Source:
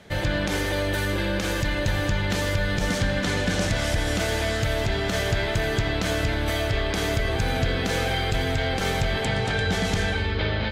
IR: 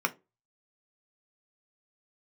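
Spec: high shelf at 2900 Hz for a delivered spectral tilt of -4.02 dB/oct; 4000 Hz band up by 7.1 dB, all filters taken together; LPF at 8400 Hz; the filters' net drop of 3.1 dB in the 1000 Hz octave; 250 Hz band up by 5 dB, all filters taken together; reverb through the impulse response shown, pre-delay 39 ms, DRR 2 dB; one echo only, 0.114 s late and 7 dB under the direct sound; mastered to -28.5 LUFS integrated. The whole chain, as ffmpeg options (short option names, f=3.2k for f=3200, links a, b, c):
-filter_complex "[0:a]lowpass=8.4k,equalizer=f=250:t=o:g=7,equalizer=f=1k:t=o:g=-6,highshelf=f=2.9k:g=6.5,equalizer=f=4k:t=o:g=4.5,aecho=1:1:114:0.447,asplit=2[a][b];[1:a]atrim=start_sample=2205,adelay=39[c];[b][c]afir=irnorm=-1:irlink=0,volume=-11.5dB[d];[a][d]amix=inputs=2:normalize=0,volume=-8dB"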